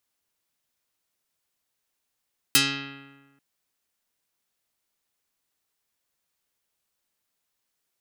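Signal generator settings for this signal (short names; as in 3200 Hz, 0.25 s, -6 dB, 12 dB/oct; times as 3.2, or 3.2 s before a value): plucked string C#3, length 0.84 s, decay 1.35 s, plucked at 0.24, dark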